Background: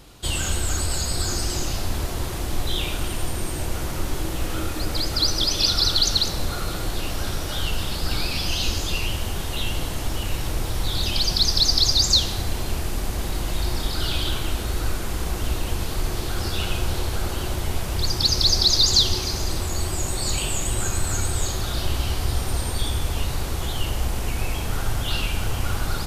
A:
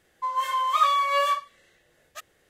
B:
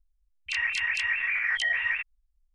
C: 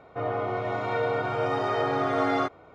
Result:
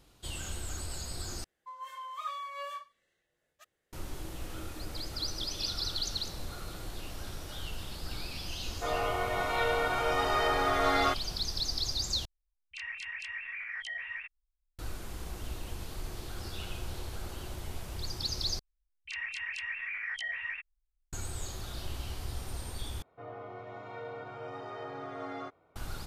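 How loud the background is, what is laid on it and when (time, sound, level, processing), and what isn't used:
background −14.5 dB
0:01.44: overwrite with A −17.5 dB
0:08.66: mix in C −1 dB + spectral tilt +3.5 dB per octave
0:12.25: overwrite with B −12.5 dB
0:18.59: overwrite with B −10 dB
0:23.02: overwrite with C −15.5 dB

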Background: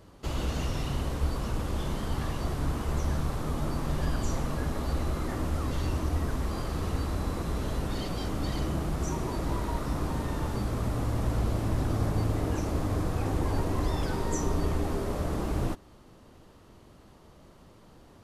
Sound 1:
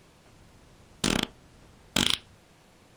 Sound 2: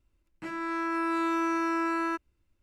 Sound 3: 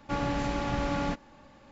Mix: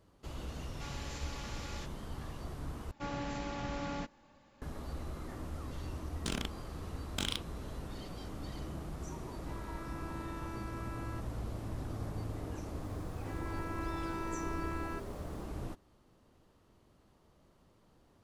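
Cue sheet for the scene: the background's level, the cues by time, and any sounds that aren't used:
background −12 dB
0:00.71: mix in 3 + first difference
0:02.91: overwrite with 3 −9 dB + high-shelf EQ 4,400 Hz +4.5 dB
0:05.22: mix in 1 −12 dB + one half of a high-frequency compander decoder only
0:09.04: mix in 2 −15 dB + harmonic and percussive parts rebalanced harmonic −3 dB
0:12.83: mix in 2 −12.5 dB + bit-depth reduction 10 bits, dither triangular

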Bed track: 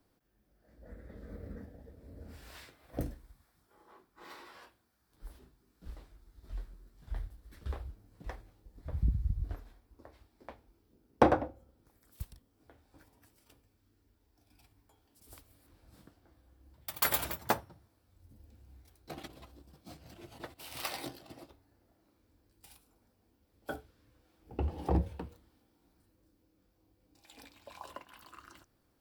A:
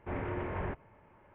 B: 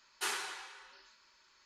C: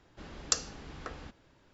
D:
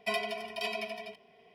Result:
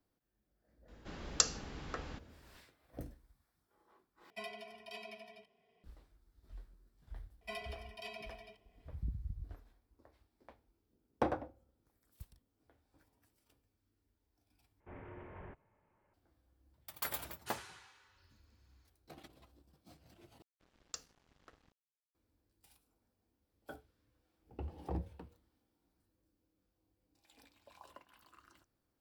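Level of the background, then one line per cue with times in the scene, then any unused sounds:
bed track −10 dB
0:00.88: mix in C −0.5 dB
0:04.30: overwrite with D −14 dB + low-shelf EQ 160 Hz +5 dB
0:07.41: mix in D −12.5 dB
0:14.80: overwrite with A −15 dB
0:17.25: mix in B −13.5 dB
0:20.42: overwrite with C −16.5 dB + dead-zone distortion −45.5 dBFS

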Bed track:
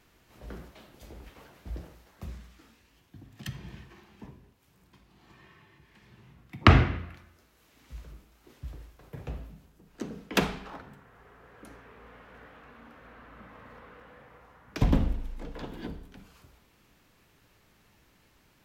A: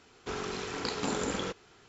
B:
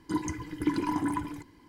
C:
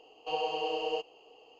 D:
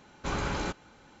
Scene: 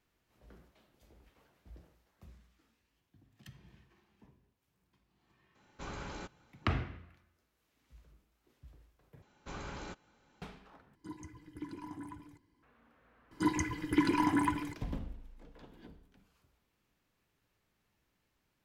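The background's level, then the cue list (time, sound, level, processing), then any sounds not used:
bed track −15.5 dB
0:05.55: mix in D −12 dB
0:09.22: overwrite with D −12.5 dB
0:10.95: overwrite with B −17.5 dB + parametric band 78 Hz +4.5 dB 2.8 octaves
0:13.31: mix in B −0.5 dB + dynamic equaliser 2,300 Hz, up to +6 dB, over −51 dBFS, Q 0.91
not used: A, C

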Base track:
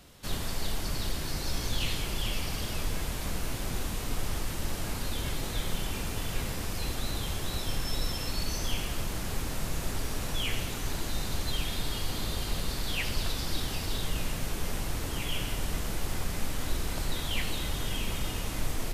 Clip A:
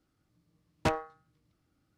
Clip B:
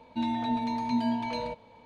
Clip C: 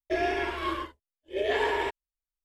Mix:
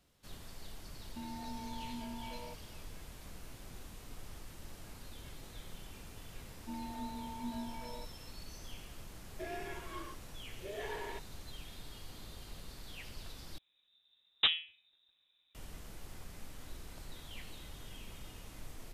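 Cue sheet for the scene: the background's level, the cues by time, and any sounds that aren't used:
base track −17 dB
0:01.00: mix in B −13 dB + brickwall limiter −24.5 dBFS
0:06.51: mix in B −14 dB + low-pass filter 2,600 Hz
0:09.29: mix in C −15.5 dB
0:13.58: overwrite with A −1 dB + voice inversion scrambler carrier 3,800 Hz

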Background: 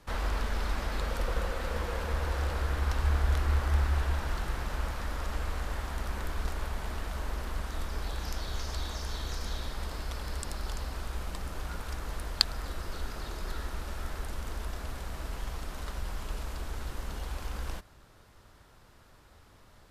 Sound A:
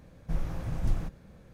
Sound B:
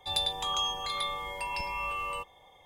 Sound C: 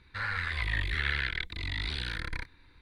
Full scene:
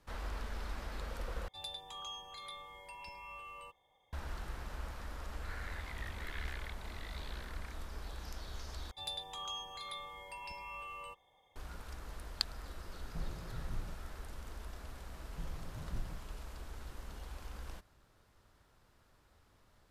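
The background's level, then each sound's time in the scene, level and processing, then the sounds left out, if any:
background −10 dB
0:01.48: overwrite with B −15 dB
0:05.29: mix in C −16 dB
0:08.91: overwrite with B −12 dB
0:12.86: mix in A −11.5 dB + speech leveller
0:15.09: mix in A −12.5 dB

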